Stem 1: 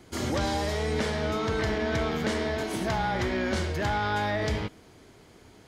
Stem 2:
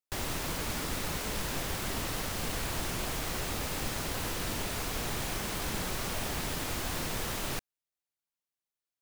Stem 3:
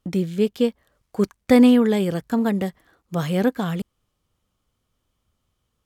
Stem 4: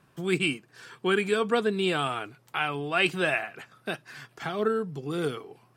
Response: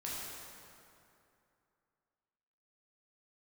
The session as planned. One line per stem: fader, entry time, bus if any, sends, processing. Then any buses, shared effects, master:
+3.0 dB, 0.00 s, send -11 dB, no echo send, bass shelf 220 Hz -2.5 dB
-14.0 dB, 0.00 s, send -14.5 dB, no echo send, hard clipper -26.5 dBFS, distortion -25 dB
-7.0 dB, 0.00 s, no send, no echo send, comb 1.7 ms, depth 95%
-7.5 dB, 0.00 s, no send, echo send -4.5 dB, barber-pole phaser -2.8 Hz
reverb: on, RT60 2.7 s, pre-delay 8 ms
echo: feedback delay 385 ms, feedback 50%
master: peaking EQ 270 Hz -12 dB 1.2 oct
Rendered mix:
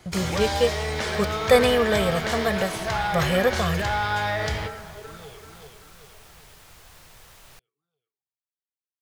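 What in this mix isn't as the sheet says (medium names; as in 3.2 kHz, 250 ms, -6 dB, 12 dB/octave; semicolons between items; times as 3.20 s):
stem 2: send off; stem 3 -7.0 dB -> +1.5 dB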